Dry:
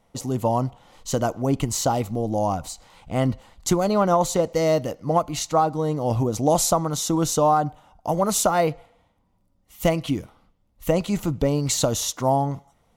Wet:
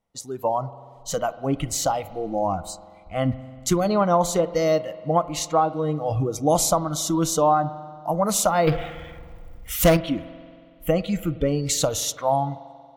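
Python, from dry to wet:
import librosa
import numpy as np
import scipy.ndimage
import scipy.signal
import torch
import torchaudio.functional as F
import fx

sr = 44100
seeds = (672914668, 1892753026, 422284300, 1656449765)

y = fx.power_curve(x, sr, exponent=0.5, at=(8.67, 9.97))
y = fx.noise_reduce_blind(y, sr, reduce_db=16)
y = fx.rev_spring(y, sr, rt60_s=2.1, pass_ms=(46,), chirp_ms=75, drr_db=15.5)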